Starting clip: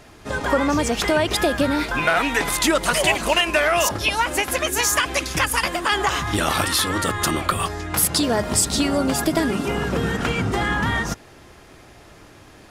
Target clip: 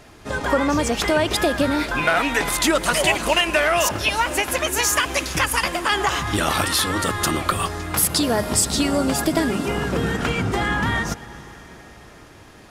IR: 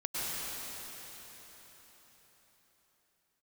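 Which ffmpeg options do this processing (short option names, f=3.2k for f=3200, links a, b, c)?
-filter_complex "[0:a]asplit=2[a][b];[1:a]atrim=start_sample=2205,adelay=117[c];[b][c]afir=irnorm=-1:irlink=0,volume=-23dB[d];[a][d]amix=inputs=2:normalize=0"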